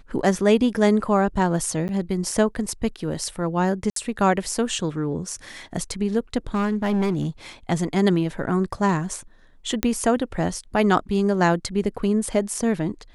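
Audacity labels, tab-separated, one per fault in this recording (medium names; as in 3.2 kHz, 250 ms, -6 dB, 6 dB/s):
1.880000	1.890000	dropout 9.9 ms
3.900000	3.960000	dropout 63 ms
6.540000	7.270000	clipped -18 dBFS
9.830000	9.830000	pop -6 dBFS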